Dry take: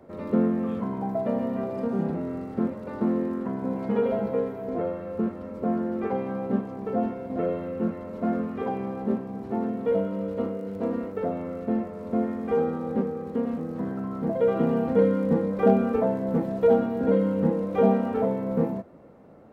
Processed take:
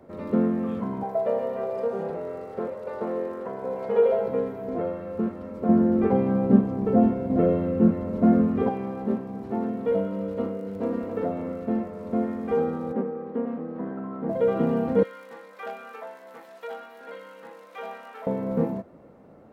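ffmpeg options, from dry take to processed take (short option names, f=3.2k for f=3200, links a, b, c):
-filter_complex "[0:a]asettb=1/sr,asplit=3[a][b][c];[a]atrim=end=1.034[d];[b]atrim=start=1.03:end=4.28,asetpts=PTS-STARTPTS,afade=t=in:d=0.004:c=qsin,afade=t=out:st=3.246:d=0.004:c=qsin,lowshelf=f=360:t=q:w=3:g=-8[e];[c]atrim=start=4.276[f];[d][e]acrossfade=d=0.004:c1=hsin:c2=qsin[g];[g][f]acrossfade=d=0.004:c1=qsin:c2=hsin,asettb=1/sr,asplit=3[h][i][j];[h]atrim=end=5.694[k];[i]atrim=start=5.69:end=8.69,asetpts=PTS-STARTPTS,afade=t=in:d=0.004:c=qsin,afade=t=out:st=2.996:d=0.004:c=qsin,lowshelf=f=420:g=11.5[l];[j]atrim=start=8.686[m];[k][l]acrossfade=d=0.004:c1=hsin:c2=qsin[n];[n][m]acrossfade=d=0.004:c1=qsin:c2=hsin,asplit=2[o][p];[p]afade=t=in:st=10.52:d=0.01,afade=t=out:st=10.98:d=0.01,aecho=0:1:280|560|840|1120|1400:0.473151|0.212918|0.0958131|0.0431159|0.0194022[q];[o][q]amix=inputs=2:normalize=0,asplit=3[r][s][t];[r]afade=t=out:st=12.92:d=0.02[u];[s]highpass=210,lowpass=2.1k,afade=t=in:st=12.92:d=0.02,afade=t=out:st=14.28:d=0.02[v];[t]afade=t=in:st=14.28:d=0.02[w];[u][v][w]amix=inputs=3:normalize=0,asettb=1/sr,asplit=3[x][y][z];[x]atrim=end=15.034[aa];[y]atrim=start=15.03:end=18.27,asetpts=PTS-STARTPTS,afade=t=in:d=0.004:c=qsin,afade=t=out:st=3.236:d=0.004:c=qsin,highpass=1.4k[ab];[z]atrim=start=18.266[ac];[aa][ab]acrossfade=d=0.004:c1=hsin:c2=qsin[ad];[ad][ac]acrossfade=d=0.004:c1=qsin:c2=hsin"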